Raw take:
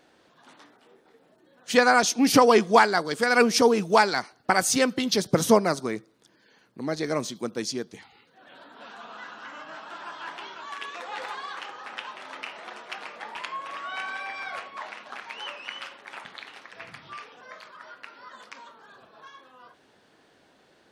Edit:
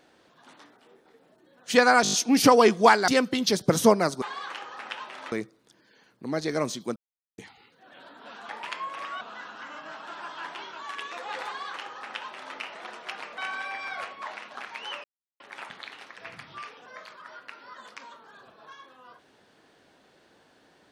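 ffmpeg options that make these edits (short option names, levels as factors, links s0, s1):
-filter_complex "[0:a]asplit=16[s0][s1][s2][s3][s4][s5][s6][s7][s8][s9][s10][s11][s12][s13][s14][s15];[s0]atrim=end=2.052[s16];[s1]atrim=start=2.028:end=2.052[s17];[s2]atrim=start=2.028:end=2.052[s18];[s3]atrim=start=2.028:end=2.052[s19];[s4]atrim=start=2.028:end=2.052[s20];[s5]atrim=start=2.028:end=2.982[s21];[s6]atrim=start=4.728:end=5.872[s22];[s7]atrim=start=11.288:end=12.392[s23];[s8]atrim=start=5.868:end=7.51,asetpts=PTS-STARTPTS,afade=t=out:st=1.638:d=0.004:c=hsin[s24];[s9]atrim=start=7.51:end=7.93,asetpts=PTS-STARTPTS,volume=0[s25];[s10]atrim=start=7.93:end=9.042,asetpts=PTS-STARTPTS,afade=t=in:d=0.004:c=hsin[s26];[s11]atrim=start=13.208:end=13.932[s27];[s12]atrim=start=9.038:end=13.212[s28];[s13]atrim=start=13.928:end=15.59,asetpts=PTS-STARTPTS,afade=t=out:st=1.658:d=0.004:c=hsin[s29];[s14]atrim=start=15.59:end=15.95,asetpts=PTS-STARTPTS,volume=0[s30];[s15]atrim=start=15.95,asetpts=PTS-STARTPTS,afade=t=in:d=0.004:c=hsin[s31];[s16][s17]acrossfade=d=0.004:c1=hsin:c2=hsin[s32];[s32][s18]acrossfade=d=0.004:c1=hsin:c2=hsin[s33];[s33][s19]acrossfade=d=0.004:c1=hsin:c2=hsin[s34];[s34][s20]acrossfade=d=0.004:c1=hsin:c2=hsin[s35];[s35][s21]acrossfade=d=0.004:c1=hsin:c2=hsin[s36];[s36][s22]acrossfade=d=0.004:c1=hsin:c2=hsin[s37];[s37][s23]acrossfade=d=0.004:c1=hsin:c2=hsin[s38];[s24][s25][s26]concat=n=3:v=0:a=1[s39];[s38][s39]acrossfade=d=0.004:c1=hsin:c2=hsin[s40];[s40][s27]acrossfade=d=0.004:c1=hsin:c2=hsin[s41];[s41][s28]acrossfade=d=0.004:c1=hsin:c2=hsin[s42];[s29][s30][s31]concat=n=3:v=0:a=1[s43];[s42][s43]acrossfade=d=0.004:c1=hsin:c2=hsin"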